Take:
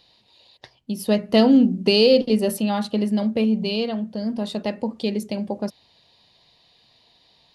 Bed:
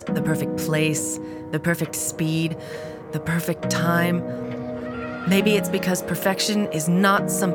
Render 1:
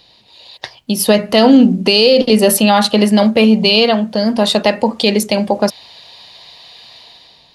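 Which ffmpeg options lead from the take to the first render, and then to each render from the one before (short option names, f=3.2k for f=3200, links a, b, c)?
-filter_complex "[0:a]acrossover=split=570[a][b];[b]dynaudnorm=f=140:g=7:m=10dB[c];[a][c]amix=inputs=2:normalize=0,alimiter=level_in=9.5dB:limit=-1dB:release=50:level=0:latency=1"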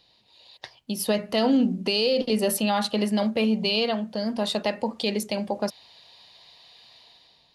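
-af "volume=-13dB"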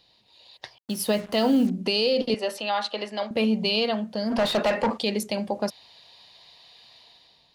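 -filter_complex "[0:a]asettb=1/sr,asplit=3[a][b][c];[a]atrim=end=0.784[d];[b]atrim=start=0.78:end=1.7,asetpts=PTS-STARTPTS,afade=t=in:d=0.004:c=qsin,afade=t=out:st=0.916:d=0.004:c=qsin,acrusher=bits=6:mix=0:aa=0.5[e];[c]atrim=start=1.696[f];[d][e]acrossfade=d=0.004:c1=hsin:c2=qsin[g];[g][f]acrossfade=d=0.004:c1=qsin:c2=hsin,asettb=1/sr,asplit=3[h][i][j];[h]atrim=end=2.344[k];[i]atrim=start=2.34:end=3.31,asetpts=PTS-STARTPTS,afade=t=in:d=0.004:c=qsin,afade=t=out:st=0.966:d=0.004:c=qsin,highpass=520,lowpass=4.9k[l];[j]atrim=start=3.306[m];[k][l]acrossfade=d=0.004:c1=hsin:c2=qsin[n];[n][m]acrossfade=d=0.004:c1=qsin:c2=hsin,asplit=3[o][p][q];[o]afade=t=out:st=4.3:d=0.02[r];[p]asplit=2[s][t];[t]highpass=f=720:p=1,volume=24dB,asoftclip=type=tanh:threshold=-14dB[u];[s][u]amix=inputs=2:normalize=0,lowpass=f=1.8k:p=1,volume=-6dB,afade=t=in:st=4.3:d=0.02,afade=t=out:st=4.96:d=0.02[v];[q]afade=t=in:st=4.96:d=0.02[w];[r][v][w]amix=inputs=3:normalize=0"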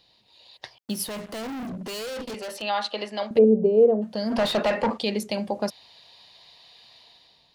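-filter_complex "[0:a]asettb=1/sr,asplit=3[a][b][c];[a]atrim=end=1.074[d];[b]atrim=start=1.07:end=2.62,asetpts=PTS-STARTPTS,afade=t=in:d=0.004:c=qsin,afade=t=out:st=1.546:d=0.004:c=qsin,asoftclip=type=hard:threshold=-32dB[e];[c]atrim=start=2.616[f];[d][e]acrossfade=d=0.004:c1=hsin:c2=qsin[g];[g][f]acrossfade=d=0.004:c1=qsin:c2=hsin,asplit=3[h][i][j];[h]afade=t=out:st=3.37:d=0.02[k];[i]lowpass=f=450:t=q:w=4.2,afade=t=in:st=3.37:d=0.02,afade=t=out:st=4.01:d=0.02[l];[j]afade=t=in:st=4.01:d=0.02[m];[k][l][m]amix=inputs=3:normalize=0,asettb=1/sr,asplit=3[n][o][p];[n]atrim=end=4.524[q];[o]atrim=start=4.52:end=5.31,asetpts=PTS-STARTPTS,afade=t=in:d=0.004:c=qsin,afade=t=out:st=0.786:d=0.004:c=qsin,highshelf=f=6.3k:g=-5[r];[p]atrim=start=5.306[s];[q][r]acrossfade=d=0.004:c1=hsin:c2=qsin[t];[t][s]acrossfade=d=0.004:c1=qsin:c2=hsin"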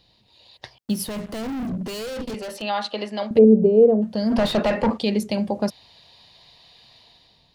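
-af "lowshelf=f=250:g=11.5"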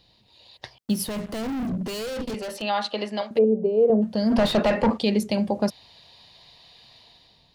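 -filter_complex "[0:a]asettb=1/sr,asplit=3[a][b][c];[a]atrim=end=3.214[d];[b]atrim=start=3.21:end=3.9,asetpts=PTS-STARTPTS,afade=t=in:d=0.004:c=qsin,afade=t=out:st=0.686:d=0.004:c=qsin,highpass=f=680:p=1[e];[c]atrim=start=3.896[f];[d][e]acrossfade=d=0.004:c1=hsin:c2=qsin[g];[g][f]acrossfade=d=0.004:c1=qsin:c2=hsin"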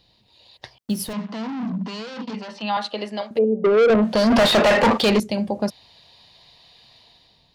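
-filter_complex "[0:a]asettb=1/sr,asplit=3[a][b][c];[a]atrim=end=1.134[d];[b]atrim=start=1.13:end=2.77,asetpts=PTS-STARTPTS,afade=t=in:d=0.004:c=qsin,afade=t=out:st=1.636:d=0.004:c=qsin,highpass=f=180:w=0.5412,highpass=f=180:w=1.3066,equalizer=f=200:t=q:w=4:g=7,equalizer=f=360:t=q:w=4:g=-10,equalizer=f=550:t=q:w=4:g=-8,equalizer=f=970:t=q:w=4:g=8,lowpass=f=5.4k:w=0.5412,lowpass=f=5.4k:w=1.3066[e];[c]atrim=start=2.766[f];[d][e]acrossfade=d=0.004:c1=hsin:c2=qsin[g];[g][f]acrossfade=d=0.004:c1=qsin:c2=hsin,asettb=1/sr,asplit=3[h][i][j];[h]atrim=end=3.644[k];[i]atrim=start=3.64:end=5.2,asetpts=PTS-STARTPTS,afade=t=in:d=0.004:c=qsin,afade=t=out:st=1.556:d=0.004:c=qsin,asplit=2[l][m];[m]highpass=f=720:p=1,volume=25dB,asoftclip=type=tanh:threshold=-9dB[n];[l][n]amix=inputs=2:normalize=0,lowpass=f=3.7k:p=1,volume=-6dB[o];[j]atrim=start=5.196[p];[k][o]acrossfade=d=0.004:c1=hsin:c2=qsin[q];[q][p]acrossfade=d=0.004:c1=qsin:c2=hsin"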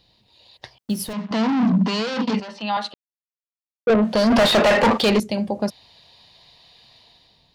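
-filter_complex "[0:a]asplit=5[a][b][c][d][e];[a]atrim=end=1.312[f];[b]atrim=start=1.308:end=2.402,asetpts=PTS-STARTPTS,volume=9dB[g];[c]atrim=start=2.398:end=2.94,asetpts=PTS-STARTPTS,afade=t=out:st=0.538:d=0.004:c=hsin[h];[d]atrim=start=2.94:end=3.87,asetpts=PTS-STARTPTS,volume=0[i];[e]atrim=start=3.87,asetpts=PTS-STARTPTS,afade=t=in:d=0.004:c=hsin[j];[f][g]acrossfade=d=0.004:c1=hsin:c2=hsin[k];[h][i][j]concat=n=3:v=0:a=1[l];[k][l]acrossfade=d=0.004:c1=hsin:c2=hsin"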